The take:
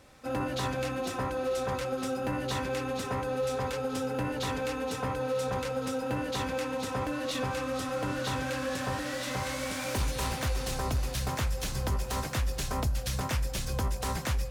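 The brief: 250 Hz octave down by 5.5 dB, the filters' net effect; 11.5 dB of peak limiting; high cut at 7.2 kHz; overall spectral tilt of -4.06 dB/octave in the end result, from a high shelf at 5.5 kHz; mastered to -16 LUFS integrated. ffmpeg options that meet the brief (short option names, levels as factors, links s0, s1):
-af "lowpass=7200,equalizer=f=250:t=o:g=-6.5,highshelf=f=5500:g=5,volume=15.8,alimiter=limit=0.398:level=0:latency=1"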